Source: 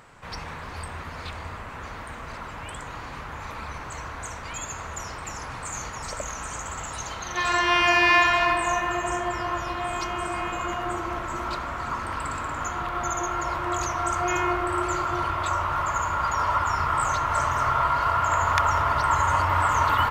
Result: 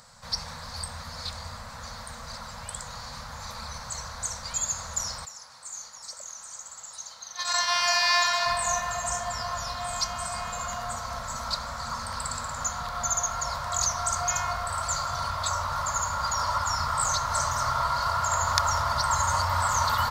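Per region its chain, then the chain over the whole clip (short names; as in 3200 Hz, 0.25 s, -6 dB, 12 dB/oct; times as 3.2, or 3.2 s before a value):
5.25–8.46 HPF 540 Hz 6 dB/oct + gate -26 dBFS, range -11 dB
whole clip: elliptic band-stop 240–490 Hz; resonant high shelf 3500 Hz +8.5 dB, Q 3; gain -2.5 dB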